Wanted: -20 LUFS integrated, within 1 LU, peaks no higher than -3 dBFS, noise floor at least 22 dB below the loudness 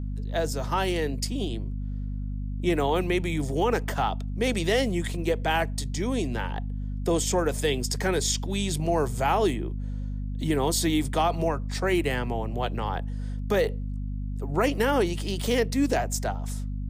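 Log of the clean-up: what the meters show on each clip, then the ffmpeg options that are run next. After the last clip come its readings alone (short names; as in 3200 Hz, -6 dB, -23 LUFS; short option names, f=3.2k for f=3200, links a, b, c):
hum 50 Hz; harmonics up to 250 Hz; hum level -29 dBFS; loudness -27.5 LUFS; peak -12.5 dBFS; loudness target -20.0 LUFS
-> -af "bandreject=f=50:t=h:w=4,bandreject=f=100:t=h:w=4,bandreject=f=150:t=h:w=4,bandreject=f=200:t=h:w=4,bandreject=f=250:t=h:w=4"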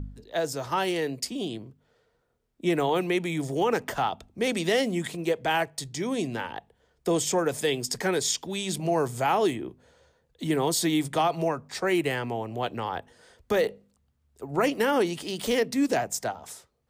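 hum none; loudness -27.5 LUFS; peak -14.0 dBFS; loudness target -20.0 LUFS
-> -af "volume=7.5dB"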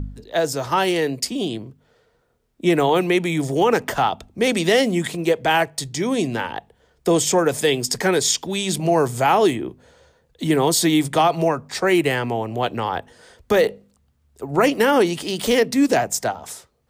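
loudness -20.0 LUFS; peak -6.5 dBFS; noise floor -64 dBFS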